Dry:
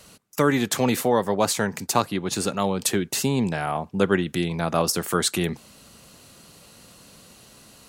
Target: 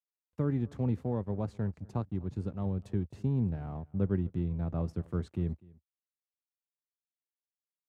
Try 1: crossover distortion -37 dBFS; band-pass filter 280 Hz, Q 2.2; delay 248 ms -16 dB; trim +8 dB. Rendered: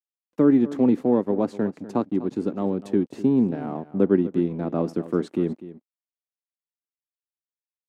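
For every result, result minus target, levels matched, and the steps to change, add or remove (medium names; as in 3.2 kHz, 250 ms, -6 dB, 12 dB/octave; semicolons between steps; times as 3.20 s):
125 Hz band -11.0 dB; echo-to-direct +8.5 dB
change: band-pass filter 76 Hz, Q 2.2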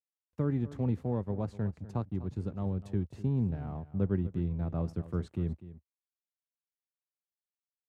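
echo-to-direct +8.5 dB
change: delay 248 ms -24.5 dB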